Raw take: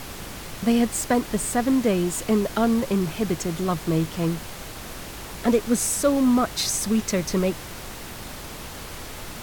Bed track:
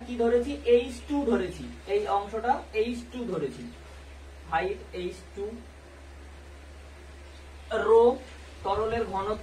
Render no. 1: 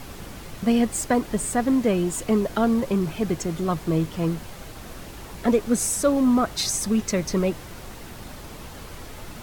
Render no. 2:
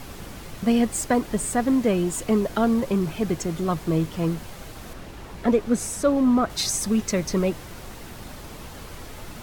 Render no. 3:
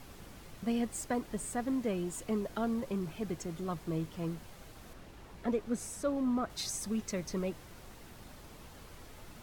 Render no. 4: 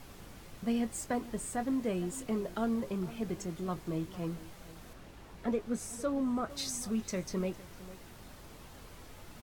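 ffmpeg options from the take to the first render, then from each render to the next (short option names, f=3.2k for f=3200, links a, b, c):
-af "afftdn=nr=6:nf=-37"
-filter_complex "[0:a]asettb=1/sr,asplit=3[a][b][c];[a]atrim=end=4.934[d];[b]atrim=start=4.93:end=6.5,asetpts=PTS-STARTPTS,afade=t=in:d=0.004:c=qsin,afade=t=out:st=1.566:d=0.004:c=qsin,highshelf=f=5k:g=-8.5[e];[c]atrim=start=6.496[f];[d][e]acrossfade=d=0.004:c1=hsin:c2=qsin[g];[g][f]acrossfade=d=0.004:c1=qsin:c2=hsin"
-af "volume=-12.5dB"
-filter_complex "[0:a]asplit=2[a][b];[b]adelay=22,volume=-12dB[c];[a][c]amix=inputs=2:normalize=0,asplit=2[d][e];[e]adelay=454.8,volume=-17dB,highshelf=f=4k:g=-10.2[f];[d][f]amix=inputs=2:normalize=0"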